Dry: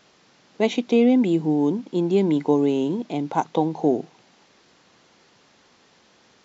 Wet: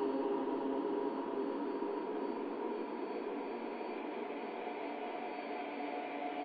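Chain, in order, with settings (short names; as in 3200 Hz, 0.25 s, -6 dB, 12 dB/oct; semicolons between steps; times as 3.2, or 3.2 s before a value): block floating point 5-bit; HPF 270 Hz 24 dB/oct; in parallel at -11 dB: overloaded stage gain 23 dB; on the sum: whine 4500 Hz -45 dBFS; wah 0.37 Hz 430–1800 Hz, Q 2.1; wavefolder -28.5 dBFS; air absorption 400 m; on a send: echo 0.276 s -22 dB; on the sum: Paulstretch 29×, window 0.50 s, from 2.9; gain +4 dB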